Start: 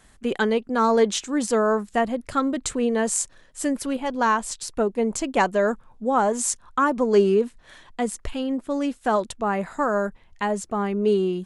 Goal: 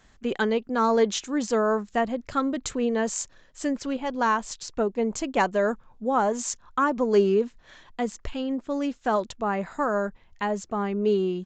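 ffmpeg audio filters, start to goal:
ffmpeg -i in.wav -af "aresample=16000,aresample=44100,volume=-2.5dB" out.wav

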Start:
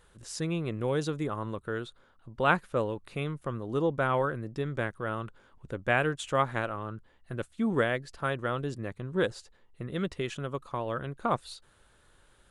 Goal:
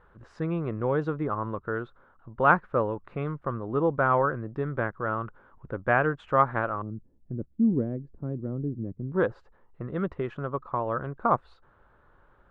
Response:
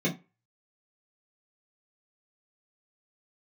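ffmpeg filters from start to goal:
-af "asetnsamples=nb_out_samples=441:pad=0,asendcmd='6.82 lowpass f 270;9.12 lowpass f 1200',lowpass=frequency=1300:width_type=q:width=1.6,volume=2dB"

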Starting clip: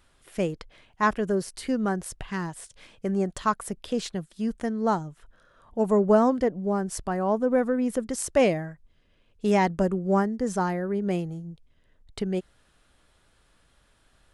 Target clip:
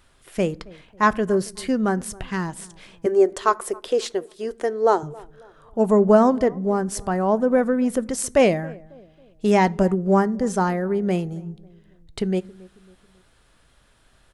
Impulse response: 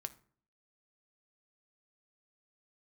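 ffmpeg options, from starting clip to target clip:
-filter_complex "[0:a]asettb=1/sr,asplit=3[link_01][link_02][link_03];[link_01]atrim=end=3.064[link_04];[link_02]atrim=start=3.06:end=5.03,asetpts=PTS-STARTPTS,afade=type=in:duration=0.004:curve=qsin,afade=type=out:start_time=1.966:duration=0.004:curve=qsin,lowshelf=frequency=270:width_type=q:width=3:gain=-11.5[link_05];[link_03]atrim=start=5.026[link_06];[link_04][link_05]acrossfade=duration=0.004:curve1=hsin:curve2=qsin[link_07];[link_07][link_06]acrossfade=duration=0.004:curve1=qsin:curve2=hsin,asplit=2[link_08][link_09];[link_09]adelay=273,lowpass=frequency=1000:poles=1,volume=-21.5dB,asplit=2[link_10][link_11];[link_11]adelay=273,lowpass=frequency=1000:poles=1,volume=0.45,asplit=2[link_12][link_13];[link_13]adelay=273,lowpass=frequency=1000:poles=1,volume=0.45[link_14];[link_08][link_10][link_12][link_14]amix=inputs=4:normalize=0,asplit=2[link_15][link_16];[1:a]atrim=start_sample=2205[link_17];[link_16][link_17]afir=irnorm=-1:irlink=0,volume=0dB[link_18];[link_15][link_18]amix=inputs=2:normalize=0"

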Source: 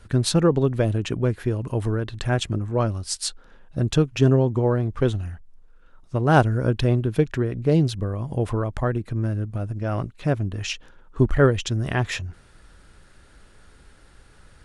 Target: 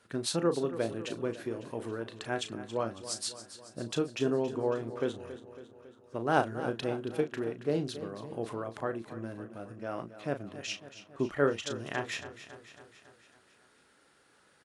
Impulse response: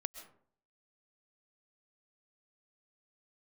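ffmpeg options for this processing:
-filter_complex "[0:a]highpass=260,asplit=2[link_01][link_02];[link_02]adelay=35,volume=-9.5dB[link_03];[link_01][link_03]amix=inputs=2:normalize=0,asplit=2[link_04][link_05];[link_05]aecho=0:1:276|552|828|1104|1380|1656:0.211|0.125|0.0736|0.0434|0.0256|0.0151[link_06];[link_04][link_06]amix=inputs=2:normalize=0,volume=-8.5dB"

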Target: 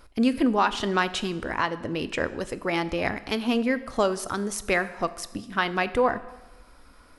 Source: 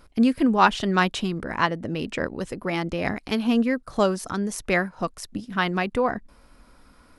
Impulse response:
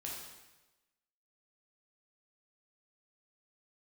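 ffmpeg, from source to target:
-filter_complex "[0:a]equalizer=frequency=180:width=1.3:gain=-7,alimiter=limit=-12.5dB:level=0:latency=1:release=181,asplit=2[link_01][link_02];[1:a]atrim=start_sample=2205[link_03];[link_02][link_03]afir=irnorm=-1:irlink=0,volume=-10dB[link_04];[link_01][link_04]amix=inputs=2:normalize=0"

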